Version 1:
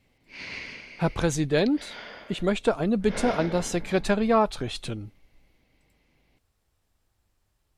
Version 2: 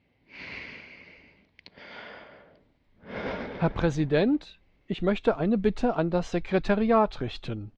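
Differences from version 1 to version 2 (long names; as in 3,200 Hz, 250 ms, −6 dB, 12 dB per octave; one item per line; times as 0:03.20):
speech: entry +2.60 s
master: add high-frequency loss of the air 200 metres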